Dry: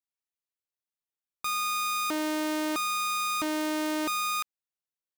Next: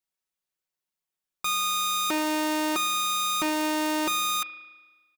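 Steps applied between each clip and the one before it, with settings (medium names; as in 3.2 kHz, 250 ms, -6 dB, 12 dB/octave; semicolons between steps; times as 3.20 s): comb 5.4 ms, depth 58%; spring tank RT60 1.3 s, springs 35 ms, chirp 20 ms, DRR 12.5 dB; trim +3.5 dB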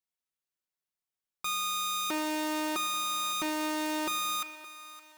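thinning echo 567 ms, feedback 50%, high-pass 500 Hz, level -16.5 dB; trim -5.5 dB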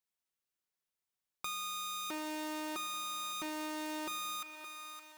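compression 2.5:1, threshold -41 dBFS, peak gain reduction 8.5 dB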